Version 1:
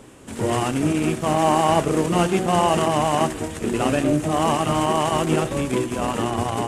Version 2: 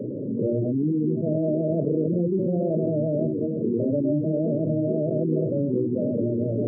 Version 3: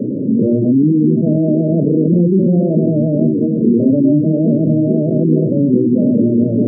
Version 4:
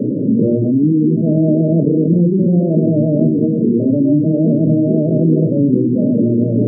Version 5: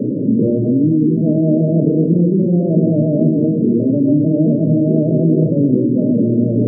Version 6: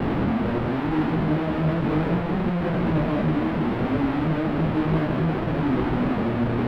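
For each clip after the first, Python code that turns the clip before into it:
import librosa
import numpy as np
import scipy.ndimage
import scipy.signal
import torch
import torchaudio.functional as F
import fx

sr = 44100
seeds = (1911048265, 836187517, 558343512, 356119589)

y1 = scipy.signal.sosfilt(scipy.signal.cheby1(5, 1.0, [110.0, 610.0], 'bandpass', fs=sr, output='sos'), x)
y1 = fx.spec_gate(y1, sr, threshold_db=-15, keep='strong')
y1 = fx.env_flatten(y1, sr, amount_pct=70)
y1 = y1 * librosa.db_to_amplitude(-4.0)
y2 = fx.peak_eq(y1, sr, hz=220.0, db=14.0, octaves=1.6)
y2 = y2 * librosa.db_to_amplitude(1.5)
y3 = fx.rider(y2, sr, range_db=10, speed_s=0.5)
y3 = fx.room_shoebox(y3, sr, seeds[0], volume_m3=440.0, walls='furnished', distance_m=0.47)
y3 = y3 * librosa.db_to_amplitude(-1.0)
y4 = y3 + 10.0 ** (-9.0 / 20.0) * np.pad(y3, (int(265 * sr / 1000.0), 0))[:len(y3)]
y4 = y4 * librosa.db_to_amplitude(-1.0)
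y5 = fx.schmitt(y4, sr, flips_db=-25.5)
y5 = fx.air_absorb(y5, sr, metres=460.0)
y5 = fx.detune_double(y5, sr, cents=35)
y5 = y5 * librosa.db_to_amplitude(-4.5)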